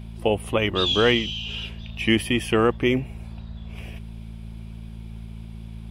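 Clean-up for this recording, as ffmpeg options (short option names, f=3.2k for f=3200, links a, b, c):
-af "bandreject=f=55.5:t=h:w=4,bandreject=f=111:t=h:w=4,bandreject=f=166.5:t=h:w=4,bandreject=f=222:t=h:w=4"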